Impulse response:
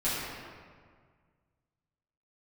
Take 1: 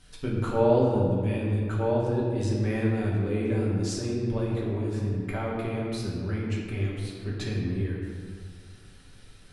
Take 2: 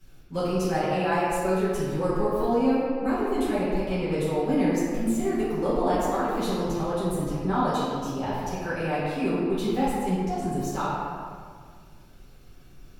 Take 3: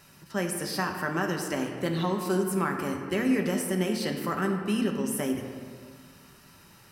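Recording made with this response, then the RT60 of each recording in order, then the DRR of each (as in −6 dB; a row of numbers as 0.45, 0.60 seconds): 2; 1.8, 1.8, 1.8 seconds; −5.0, −12.5, 2.5 decibels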